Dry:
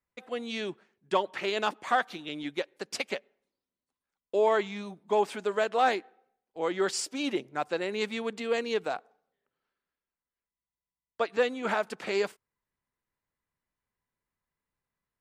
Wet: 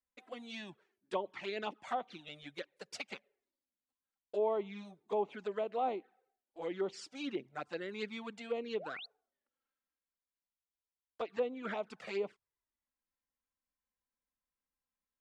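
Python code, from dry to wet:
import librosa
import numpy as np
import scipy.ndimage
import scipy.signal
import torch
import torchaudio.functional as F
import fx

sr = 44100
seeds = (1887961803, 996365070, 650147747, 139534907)

y = fx.env_flanger(x, sr, rest_ms=3.8, full_db=-24.0)
y = fx.env_lowpass_down(y, sr, base_hz=1700.0, full_db=-24.5)
y = fx.spec_paint(y, sr, seeds[0], shape='rise', start_s=8.79, length_s=0.27, low_hz=470.0, high_hz=4600.0, level_db=-40.0)
y = y * 10.0 ** (-6.5 / 20.0)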